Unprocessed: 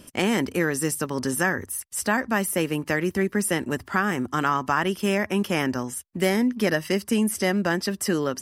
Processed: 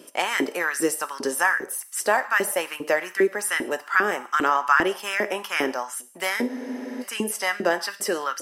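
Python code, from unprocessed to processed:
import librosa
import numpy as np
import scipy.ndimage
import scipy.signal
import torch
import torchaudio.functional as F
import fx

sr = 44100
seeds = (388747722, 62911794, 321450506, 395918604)

y = fx.rev_gated(x, sr, seeds[0], gate_ms=220, shape='falling', drr_db=11.0)
y = fx.filter_lfo_highpass(y, sr, shape='saw_up', hz=2.5, low_hz=330.0, high_hz=1700.0, q=2.4)
y = fx.spec_freeze(y, sr, seeds[1], at_s=6.51, hold_s=0.51)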